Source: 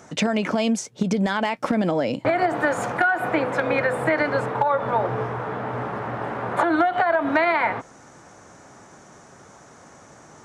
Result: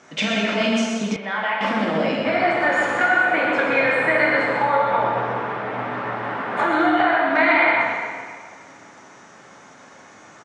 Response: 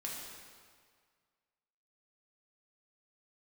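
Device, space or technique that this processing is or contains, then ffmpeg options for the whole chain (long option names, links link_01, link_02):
PA in a hall: -filter_complex "[0:a]highpass=frequency=190:poles=1,lowpass=6500,equalizer=frequency=2600:width_type=o:width=1.6:gain=7,aecho=1:1:126:0.473[link_01];[1:a]atrim=start_sample=2205[link_02];[link_01][link_02]afir=irnorm=-1:irlink=0,asettb=1/sr,asplit=3[link_03][link_04][link_05];[link_03]atrim=end=1.164[link_06];[link_04]atrim=start=1.16:end=1.61,asetpts=PTS-STARTPTS,afade=type=in:duration=0.004:curve=qsin,afade=type=out:start_time=0.446:duration=0.004:curve=qsin,acrossover=split=540 2900:gain=0.141 1 0.0708[link_07][link_08][link_09];[link_07][link_08][link_09]amix=inputs=3:normalize=0[link_10];[link_05]atrim=start=1.606[link_11];[link_06][link_10]acrossfade=duration=0.004:curve1=hsin:curve2=qsin[link_12];[link_12][link_11]acrossfade=duration=0.004:curve1=qsin:curve2=hsin"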